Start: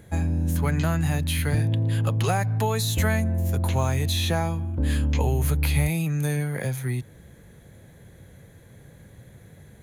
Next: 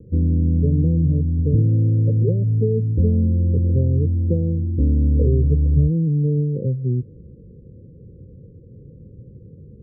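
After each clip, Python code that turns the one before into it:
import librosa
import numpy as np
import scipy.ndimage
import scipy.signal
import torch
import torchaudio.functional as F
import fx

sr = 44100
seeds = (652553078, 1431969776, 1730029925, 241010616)

y = scipy.signal.sosfilt(scipy.signal.butter(16, 520.0, 'lowpass', fs=sr, output='sos'), x)
y = F.gain(torch.from_numpy(y), 6.5).numpy()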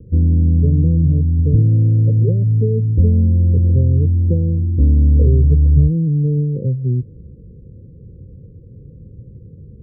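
y = fx.low_shelf(x, sr, hz=130.0, db=9.0)
y = F.gain(torch.from_numpy(y), -1.0).numpy()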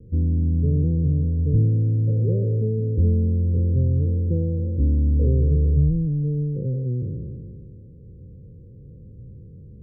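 y = fx.spec_trails(x, sr, decay_s=2.48)
y = F.gain(torch.from_numpy(y), -8.0).numpy()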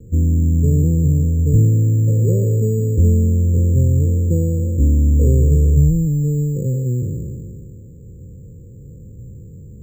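y = np.repeat(x[::6], 6)[:len(x)]
y = F.gain(torch.from_numpy(y), 5.5).numpy()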